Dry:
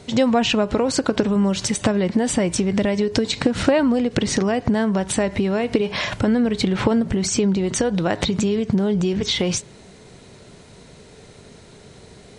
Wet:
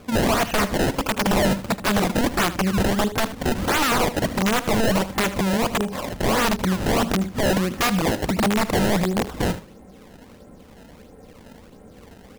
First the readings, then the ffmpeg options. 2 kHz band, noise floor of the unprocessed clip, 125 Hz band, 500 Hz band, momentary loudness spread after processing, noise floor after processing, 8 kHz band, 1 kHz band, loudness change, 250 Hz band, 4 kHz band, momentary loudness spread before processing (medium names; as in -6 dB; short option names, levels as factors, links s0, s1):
+3.5 dB, -46 dBFS, 0.0 dB, -3.0 dB, 4 LU, -47 dBFS, -2.5 dB, +4.5 dB, -1.5 dB, -3.5 dB, -1.0 dB, 3 LU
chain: -filter_complex "[0:a]lowpass=1100,aecho=1:1:3.8:0.59,acrusher=samples=22:mix=1:aa=0.000001:lfo=1:lforange=35.2:lforate=1.5,aeval=exprs='(mod(5.62*val(0)+1,2)-1)/5.62':c=same,asplit=2[s0][s1];[s1]aecho=0:1:77:0.188[s2];[s0][s2]amix=inputs=2:normalize=0"